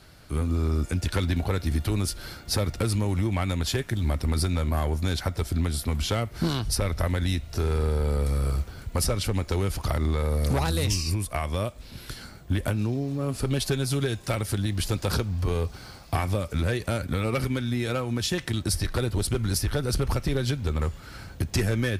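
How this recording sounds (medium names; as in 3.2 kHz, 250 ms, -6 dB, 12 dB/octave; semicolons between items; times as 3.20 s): noise floor -45 dBFS; spectral tilt -5.5 dB/octave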